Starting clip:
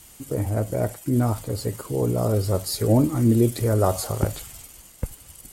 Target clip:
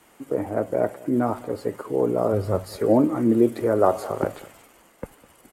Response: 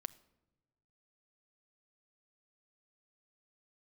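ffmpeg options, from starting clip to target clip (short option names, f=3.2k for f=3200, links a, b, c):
-filter_complex "[0:a]acrossover=split=220 2200:gain=0.0891 1 0.126[a][b][c];[a][b][c]amix=inputs=3:normalize=0,aecho=1:1:204:0.0891,asplit=3[d][e][f];[d]afade=t=out:st=2.32:d=0.02[g];[e]asubboost=boost=6.5:cutoff=140,afade=t=in:st=2.32:d=0.02,afade=t=out:st=2.76:d=0.02[h];[f]afade=t=in:st=2.76:d=0.02[i];[g][h][i]amix=inputs=3:normalize=0,volume=4dB"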